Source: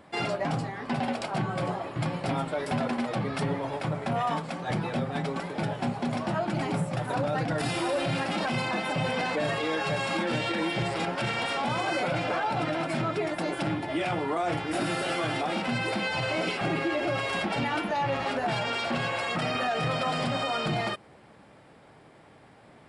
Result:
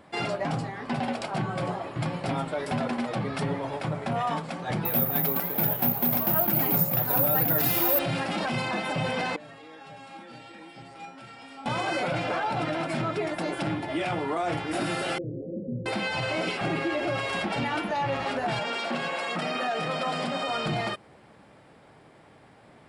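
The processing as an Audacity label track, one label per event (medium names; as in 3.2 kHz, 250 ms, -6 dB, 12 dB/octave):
4.850000	7.990000	careless resampling rate divided by 3×, down none, up zero stuff
9.360000	11.660000	feedback comb 270 Hz, decay 0.45 s, harmonics odd, mix 90%
15.180000	15.860000	rippled Chebyshev low-pass 550 Hz, ripple 3 dB
18.590000	20.480000	Chebyshev high-pass 170 Hz, order 4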